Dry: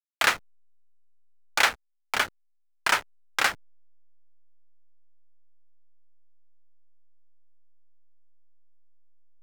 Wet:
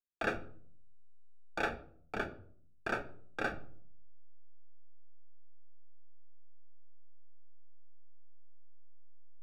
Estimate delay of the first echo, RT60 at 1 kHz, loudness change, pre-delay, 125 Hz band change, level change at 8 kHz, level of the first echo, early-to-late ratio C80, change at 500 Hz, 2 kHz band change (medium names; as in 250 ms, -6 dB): no echo, 0.50 s, -13.5 dB, 3 ms, +3.0 dB, -27.0 dB, no echo, 19.0 dB, -2.0 dB, -13.0 dB